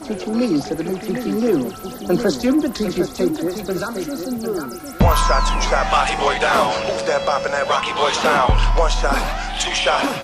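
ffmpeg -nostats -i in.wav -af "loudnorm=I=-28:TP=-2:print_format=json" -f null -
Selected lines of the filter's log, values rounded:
"input_i" : "-19.0",
"input_tp" : "-4.8",
"input_lra" : "3.1",
"input_thresh" : "-29.1",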